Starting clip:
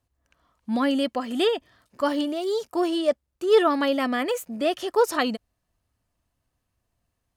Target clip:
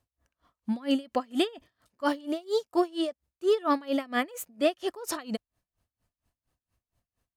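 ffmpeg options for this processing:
-af "aeval=exprs='val(0)*pow(10,-26*(0.5-0.5*cos(2*PI*4.3*n/s))/20)':c=same,volume=1.5dB"

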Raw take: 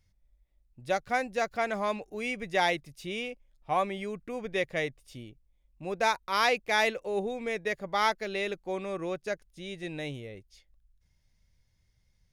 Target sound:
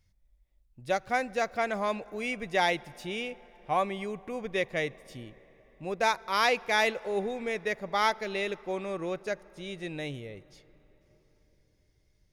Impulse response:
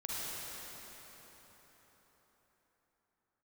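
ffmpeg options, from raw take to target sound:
-filter_complex "[0:a]asplit=2[a][b];[1:a]atrim=start_sample=2205,highshelf=f=4.1k:g=-8[c];[b][c]afir=irnorm=-1:irlink=0,volume=-23dB[d];[a][d]amix=inputs=2:normalize=0"

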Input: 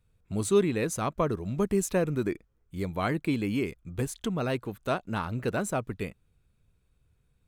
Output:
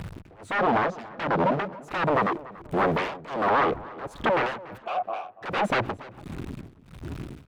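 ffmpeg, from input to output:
-filter_complex "[0:a]aeval=exprs='val(0)+0.5*0.0119*sgn(val(0))':c=same,asettb=1/sr,asplit=3[a][b][c];[a]atrim=end=0.594[d];[b]atrim=start=0.59:end=1.73,asetpts=PTS-STARTPTS,afade=t=in:d=0.004:c=qsin,afade=t=out:st=1.136:d=0.004:c=qsin,highpass=f=160:w=0.5412,highpass=f=160:w=1.3066,equalizer=f=190:t=q:w=4:g=9,equalizer=f=550:t=q:w=4:g=-8,equalizer=f=2k:t=q:w=4:g=-10,lowpass=f=4.8k:w=0.5412,lowpass=f=4.8k:w=1.3066[e];[c]atrim=start=1.726[f];[d][e]acrossfade=d=0.004:c1=hsin:c2=qsin[g];[g][f]acrossfade=d=0.004:c1=qsin:c2=hsin,afwtdn=0.0141,asettb=1/sr,asplit=3[h][i][j];[h]atrim=end=3.484[k];[i]atrim=start=3.48:end=4.11,asetpts=PTS-STARTPTS,afade=t=in:d=0.004:c=qsin,afade=t=out:st=0.626:d=0.004:c=qsin,tiltshelf=f=1.2k:g=7.5[l];[j]atrim=start=4.106[m];[k][l]acrossfade=d=0.004:c1=hsin:c2=qsin[n];[n][m]acrossfade=d=0.004:c1=qsin:c2=hsin,acompressor=threshold=-28dB:ratio=6,aeval=exprs='0.0158*(abs(mod(val(0)/0.0158+3,4)-2)-1)':c=same,asplit=3[o][p][q];[o]afade=t=out:st=4.77:d=0.02[r];[p]asplit=3[s][t][u];[s]bandpass=f=730:t=q:w=8,volume=0dB[v];[t]bandpass=f=1.09k:t=q:w=8,volume=-6dB[w];[u]bandpass=f=2.44k:t=q:w=8,volume=-9dB[x];[v][w][x]amix=inputs=3:normalize=0,afade=t=in:st=4.77:d=0.02,afade=t=out:st=5.41:d=0.02[y];[q]afade=t=in:st=5.41:d=0.02[z];[r][y][z]amix=inputs=3:normalize=0,asplit=2[aa][ab];[ab]highpass=f=720:p=1,volume=34dB,asoftclip=type=tanh:threshold=-8.5dB[ac];[aa][ac]amix=inputs=2:normalize=0,lowpass=f=1.6k:p=1,volume=-6dB,tremolo=f=1.4:d=0.98,asplit=2[ad][ae];[ae]adelay=287,lowpass=f=2k:p=1,volume=-18.5dB,asplit=2[af][ag];[ag]adelay=287,lowpass=f=2k:p=1,volume=0.4,asplit=2[ah][ai];[ai]adelay=287,lowpass=f=2k:p=1,volume=0.4[aj];[ad][af][ah][aj]amix=inputs=4:normalize=0,acrossover=split=3700[ak][al];[al]acompressor=threshold=-49dB:ratio=4:attack=1:release=60[am];[ak][am]amix=inputs=2:normalize=0"

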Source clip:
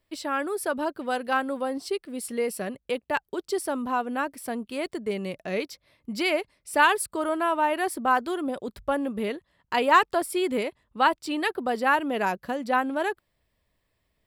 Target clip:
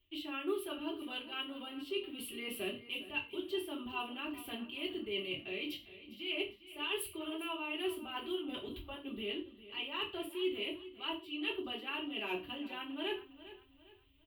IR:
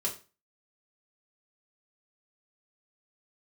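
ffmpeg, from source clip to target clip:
-filter_complex "[0:a]firequalizer=gain_entry='entry(100,0);entry(200,-21);entry(290,1);entry(440,-18);entry(1100,-13);entry(1700,-16);entry(2900,9);entry(5000,-24);entry(7100,-25);entry(16000,0)':delay=0.05:min_phase=1,areverse,acompressor=threshold=-42dB:ratio=12,areverse,aecho=1:1:404|808|1212:0.168|0.0621|0.023[a];[1:a]atrim=start_sample=2205,atrim=end_sample=6615[b];[a][b]afir=irnorm=-1:irlink=0,volume=2.5dB"

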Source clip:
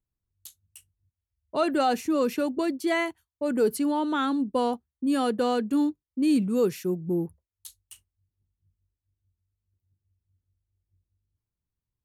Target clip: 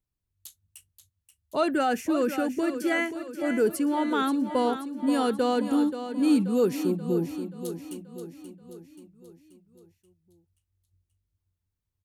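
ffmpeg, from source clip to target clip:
-filter_complex "[0:a]asettb=1/sr,asplit=3[a][b][c];[a]atrim=end=1.724[d];[b]atrim=start=1.72:end=3.94,asetpts=PTS-STARTPTS,afade=t=in:d=0.004:c=qsin,afade=t=out:st=2.216:d=0.004:c=qsin,equalizer=f=630:t=o:w=0.33:g=-4,equalizer=f=1k:t=o:w=0.33:g=-8,equalizer=f=1.6k:t=o:w=0.33:g=6,equalizer=f=4k:t=o:w=0.33:g=-10[e];[c]atrim=start=3.936[f];[d][e]acrossfade=d=0.004:c1=hsin:c2=qsin[g];[g][f]acrossfade=d=0.004:c1=qsin:c2=hsin,aecho=1:1:531|1062|1593|2124|2655|3186:0.316|0.171|0.0922|0.0498|0.0269|0.0145"

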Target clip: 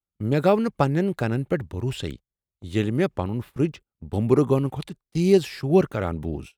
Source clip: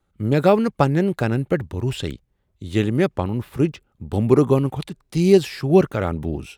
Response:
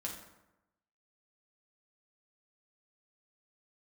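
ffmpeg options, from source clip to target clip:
-af "agate=range=-22dB:threshold=-34dB:ratio=16:detection=peak,volume=-3.5dB"

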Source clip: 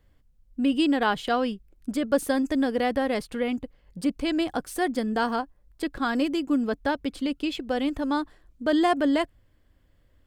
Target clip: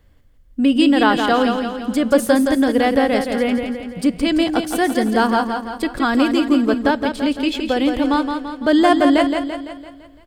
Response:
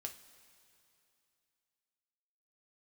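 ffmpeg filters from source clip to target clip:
-filter_complex "[0:a]aecho=1:1:169|338|507|676|845|1014:0.501|0.261|0.136|0.0705|0.0366|0.0191,asplit=2[a][b];[1:a]atrim=start_sample=2205[c];[b][c]afir=irnorm=-1:irlink=0,volume=-8dB[d];[a][d]amix=inputs=2:normalize=0,volume=6dB"

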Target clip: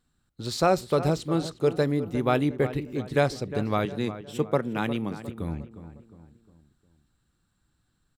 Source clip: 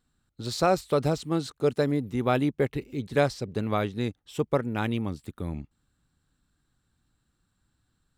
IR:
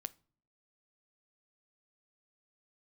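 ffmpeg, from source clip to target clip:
-filter_complex "[0:a]asettb=1/sr,asplit=3[a][b][c];[a]atrim=end=3.854[d];[b]atrim=start=3.85:end=5.22,asetpts=PTS-STARTPTS,afade=t=in:d=0.004:c=qsin,afade=t=out:st=1.366:d=0.004:c=qsin,highpass=f=120:w=0.5412,highpass=f=120:w=1.3066[e];[c]atrim=start=5.216[f];[d][e]acrossfade=d=0.004:c1=hsin:c2=qsin[g];[g][f]acrossfade=d=0.004:c1=qsin:c2=hsin,asplit=2[h][i];[i]adelay=357,lowpass=f=2.1k:p=1,volume=-12.5dB,asplit=2[j][k];[k]adelay=357,lowpass=f=2.1k:p=1,volume=0.45,asplit=2[l][m];[m]adelay=357,lowpass=f=2.1k:p=1,volume=0.45,asplit=2[n][o];[o]adelay=357,lowpass=f=2.1k:p=1,volume=0.45[p];[h][j][l][n][p]amix=inputs=5:normalize=0,asplit=2[q][r];[1:a]atrim=start_sample=2205,asetrate=61740,aresample=44100[s];[r][s]afir=irnorm=-1:irlink=0,volume=11dB[t];[q][t]amix=inputs=2:normalize=0,volume=-8dB"

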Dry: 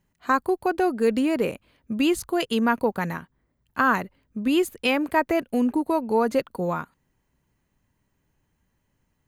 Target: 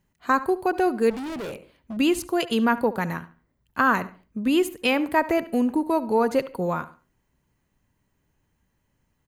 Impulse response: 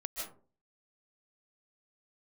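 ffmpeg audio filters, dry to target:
-filter_complex "[0:a]asplit=2[a][b];[b]adelay=71,lowpass=f=4k:p=1,volume=-16dB,asplit=2[c][d];[d]adelay=71,lowpass=f=4k:p=1,volume=0.32,asplit=2[e][f];[f]adelay=71,lowpass=f=4k:p=1,volume=0.32[g];[a][c][e][g]amix=inputs=4:normalize=0,asplit=2[h][i];[1:a]atrim=start_sample=2205,asetrate=70560,aresample=44100[j];[i][j]afir=irnorm=-1:irlink=0,volume=-18.5dB[k];[h][k]amix=inputs=2:normalize=0,asettb=1/sr,asplit=3[l][m][n];[l]atrim=end=1.104[o];[m]atrim=start=1.1:end=1.97,asetpts=PTS-STARTPTS,afade=t=in:d=0.004:c=qsin,afade=t=out:st=0.866:d=0.004:c=qsin,volume=30.5dB,asoftclip=hard,volume=-30.5dB[p];[n]atrim=start=1.966[q];[o][p]acrossfade=d=0.004:c1=hsin:c2=qsin[r];[r][q]acrossfade=d=0.004:c1=qsin:c2=hsin"

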